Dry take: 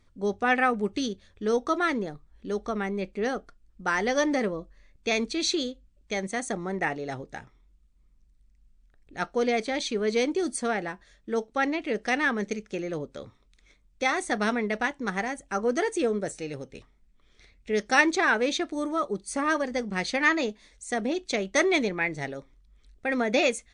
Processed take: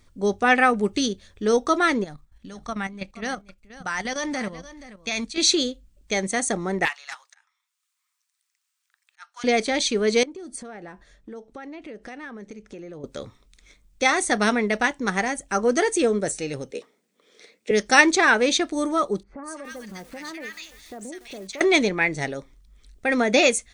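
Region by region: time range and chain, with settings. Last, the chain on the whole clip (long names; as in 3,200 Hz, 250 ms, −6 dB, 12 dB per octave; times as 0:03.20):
0:02.04–0:05.38: parametric band 410 Hz −12.5 dB + output level in coarse steps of 11 dB + single-tap delay 477 ms −15.5 dB
0:06.85–0:09.44: Butterworth high-pass 1,000 Hz + volume swells 532 ms + highs frequency-modulated by the lows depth 0.2 ms
0:10.23–0:13.04: high-shelf EQ 2,100 Hz −10 dB + downward compressor 5 to 1, threshold −42 dBFS
0:16.71–0:17.71: high-pass filter 210 Hz 24 dB per octave + parametric band 480 Hz +12.5 dB 0.52 octaves
0:19.23–0:21.61: multiband delay without the direct sound lows, highs 200 ms, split 1,500 Hz + downward compressor 2.5 to 1, threshold −47 dBFS + feedback echo at a low word length 289 ms, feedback 55%, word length 8 bits, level −14.5 dB
whole clip: de-essing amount 40%; high-shelf EQ 5,800 Hz +9.5 dB; level +5 dB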